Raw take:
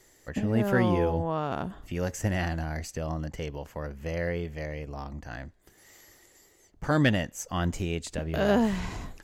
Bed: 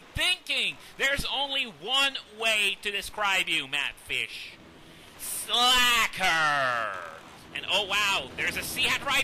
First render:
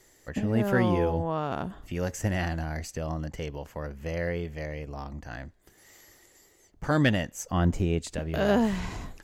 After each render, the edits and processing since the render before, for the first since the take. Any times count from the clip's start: 7.51–7.99 tilt shelf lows +5 dB, about 1300 Hz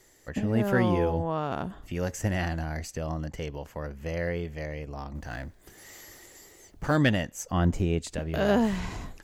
5.15–6.96 G.711 law mismatch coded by mu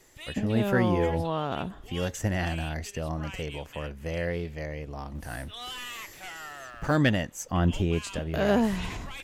add bed -17.5 dB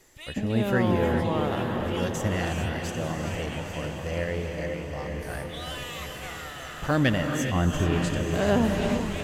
diffused feedback echo 0.915 s, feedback 46%, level -7 dB; non-linear reverb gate 0.45 s rising, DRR 4.5 dB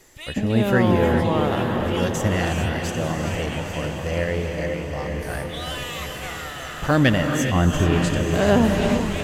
gain +5.5 dB

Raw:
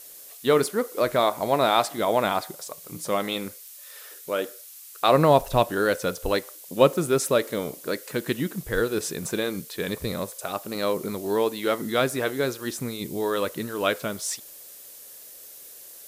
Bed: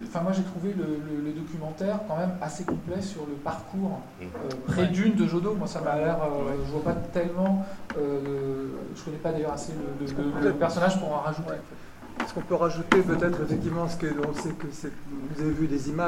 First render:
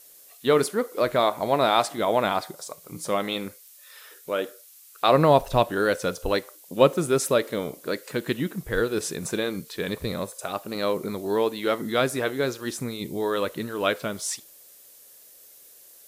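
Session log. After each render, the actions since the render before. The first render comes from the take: noise print and reduce 6 dB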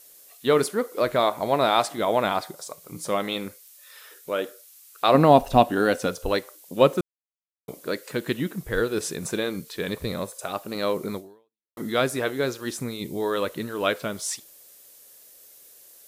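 5.14–6.07 small resonant body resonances 250/740/2800 Hz, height 10 dB; 7.01–7.68 mute; 11.17–11.77 fade out exponential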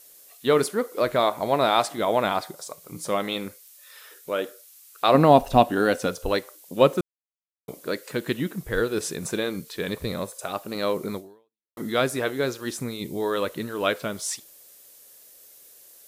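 nothing audible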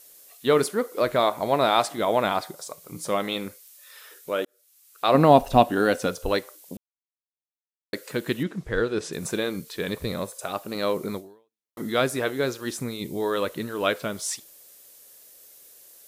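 4.45–5.24 fade in; 6.77–7.93 mute; 8.43–9.13 air absorption 81 m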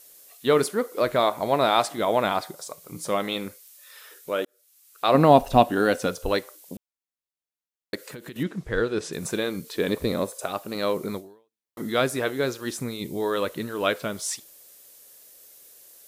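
7.95–8.36 compressor 12:1, threshold -35 dBFS; 9.64–10.46 EQ curve 160 Hz 0 dB, 270 Hz +7 dB, 1600 Hz +1 dB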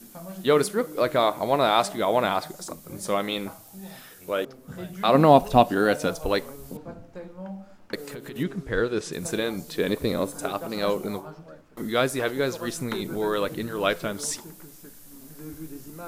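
add bed -13 dB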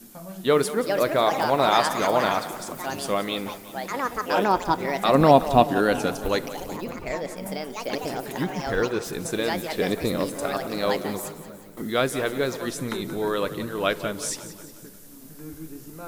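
echoes that change speed 0.528 s, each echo +5 st, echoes 2, each echo -6 dB; split-band echo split 330 Hz, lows 0.395 s, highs 0.179 s, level -14 dB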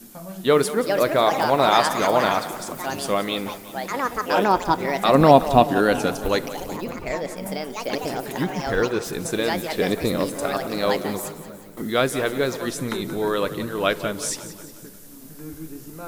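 gain +2.5 dB; limiter -1 dBFS, peak gain reduction 1.5 dB

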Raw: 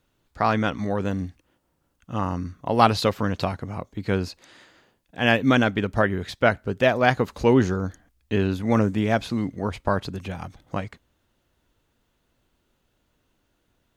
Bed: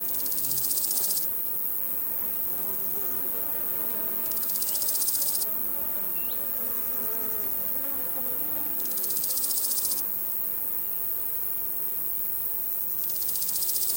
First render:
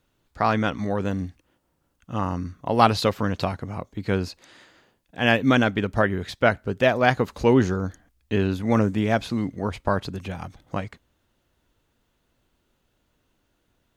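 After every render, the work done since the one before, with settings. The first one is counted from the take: nothing audible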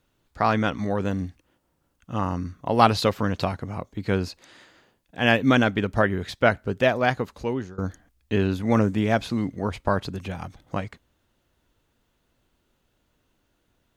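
6.74–7.78 fade out, to -20.5 dB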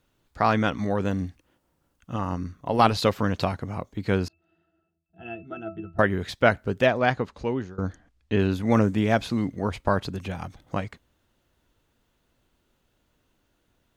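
2.16–3.03 AM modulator 98 Hz, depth 25%; 4.28–5.99 octave resonator E, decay 0.21 s; 6.86–8.39 air absorption 69 m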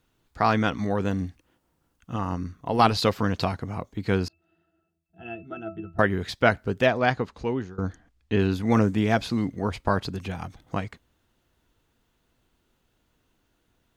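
notch 570 Hz, Q 12; dynamic EQ 4800 Hz, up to +4 dB, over -52 dBFS, Q 3.6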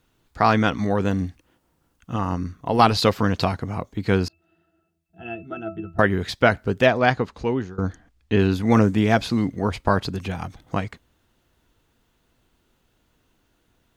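gain +4 dB; limiter -3 dBFS, peak gain reduction 2.5 dB

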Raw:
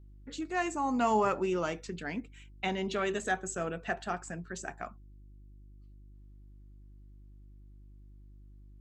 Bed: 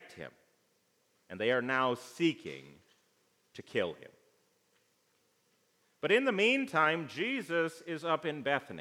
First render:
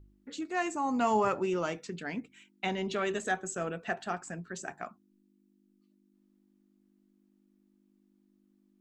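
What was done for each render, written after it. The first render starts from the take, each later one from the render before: de-hum 50 Hz, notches 3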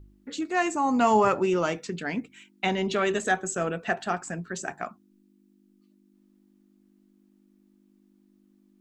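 gain +6.5 dB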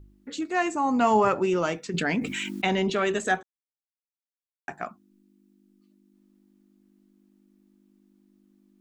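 0.57–1.36 high shelf 6500 Hz -6 dB; 1.94–2.9 fast leveller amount 70%; 3.43–4.68 mute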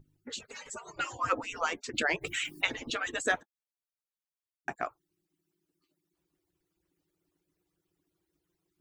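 median-filter separation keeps percussive

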